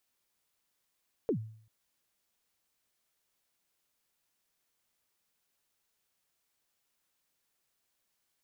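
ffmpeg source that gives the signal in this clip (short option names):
-f lavfi -i "aevalsrc='0.0631*pow(10,-3*t/0.57)*sin(2*PI*(510*0.09/log(110/510)*(exp(log(110/510)*min(t,0.09)/0.09)-1)+110*max(t-0.09,0)))':d=0.39:s=44100"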